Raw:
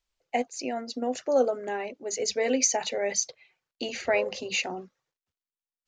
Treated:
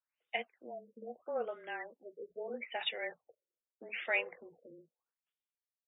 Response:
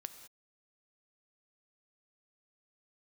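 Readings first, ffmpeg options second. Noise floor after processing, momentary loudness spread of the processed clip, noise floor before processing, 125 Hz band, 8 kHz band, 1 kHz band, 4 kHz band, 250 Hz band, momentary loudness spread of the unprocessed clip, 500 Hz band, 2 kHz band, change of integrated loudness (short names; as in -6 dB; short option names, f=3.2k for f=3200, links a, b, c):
under -85 dBFS, 20 LU, under -85 dBFS, n/a, under -40 dB, -12.0 dB, -9.0 dB, -20.0 dB, 10 LU, -14.0 dB, -5.0 dB, -11.5 dB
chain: -af "afreqshift=-24,aderivative,afftfilt=real='re*lt(b*sr/1024,570*pow(3800/570,0.5+0.5*sin(2*PI*0.79*pts/sr)))':imag='im*lt(b*sr/1024,570*pow(3800/570,0.5+0.5*sin(2*PI*0.79*pts/sr)))':win_size=1024:overlap=0.75,volume=8.5dB"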